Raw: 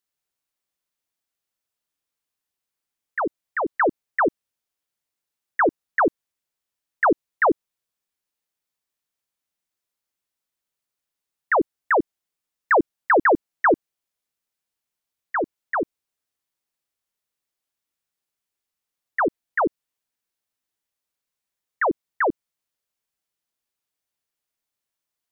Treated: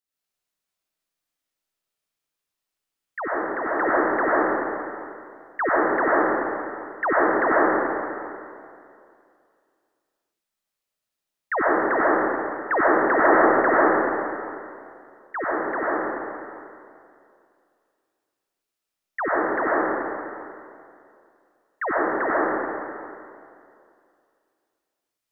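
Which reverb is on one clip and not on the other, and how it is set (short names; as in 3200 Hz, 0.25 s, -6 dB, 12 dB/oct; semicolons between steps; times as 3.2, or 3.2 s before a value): digital reverb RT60 2.4 s, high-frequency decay 0.85×, pre-delay 45 ms, DRR -8 dB; gain -6.5 dB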